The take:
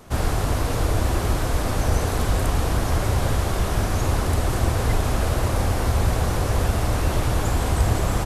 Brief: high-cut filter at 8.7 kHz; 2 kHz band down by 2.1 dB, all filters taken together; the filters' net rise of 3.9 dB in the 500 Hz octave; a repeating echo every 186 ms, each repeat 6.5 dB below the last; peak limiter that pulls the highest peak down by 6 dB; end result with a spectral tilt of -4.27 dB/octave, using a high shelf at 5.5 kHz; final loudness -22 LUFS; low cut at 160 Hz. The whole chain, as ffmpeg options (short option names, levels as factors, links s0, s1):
-af "highpass=160,lowpass=8700,equalizer=f=500:t=o:g=5,equalizer=f=2000:t=o:g=-4,highshelf=f=5500:g=7,alimiter=limit=0.133:level=0:latency=1,aecho=1:1:186|372|558|744|930|1116:0.473|0.222|0.105|0.0491|0.0231|0.0109,volume=1.58"